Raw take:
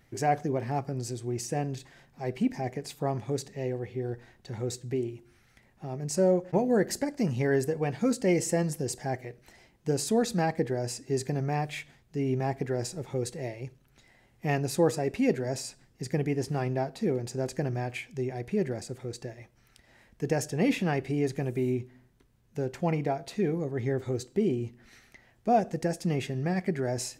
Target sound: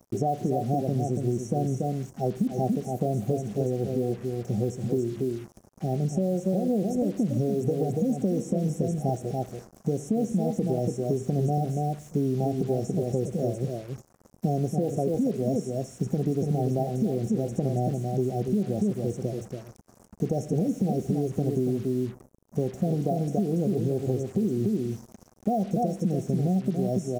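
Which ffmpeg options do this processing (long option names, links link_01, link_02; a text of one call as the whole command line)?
ffmpeg -i in.wav -filter_complex "[0:a]highpass=42,asplit=2[link_01][link_02];[link_02]aecho=0:1:283:0.447[link_03];[link_01][link_03]amix=inputs=2:normalize=0,afftfilt=real='re*(1-between(b*sr/4096,800,5400))':imag='im*(1-between(b*sr/4096,800,5400))':win_size=4096:overlap=0.75,equalizer=frequency=200:width_type=o:width=0.32:gain=11,alimiter=limit=-20.5dB:level=0:latency=1:release=186,acompressor=threshold=-30dB:ratio=8,acrusher=bits=8:mix=0:aa=0.5,acrossover=split=3500[link_04][link_05];[link_05]acompressor=threshold=-57dB:ratio=4:attack=1:release=60[link_06];[link_04][link_06]amix=inputs=2:normalize=0,volume=8.5dB" out.wav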